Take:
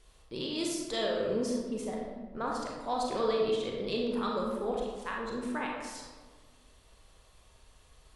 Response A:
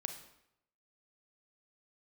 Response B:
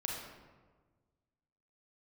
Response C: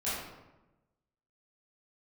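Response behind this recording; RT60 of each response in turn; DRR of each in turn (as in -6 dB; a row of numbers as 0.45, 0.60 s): B; 0.80, 1.4, 1.0 s; 6.0, -2.0, -12.0 dB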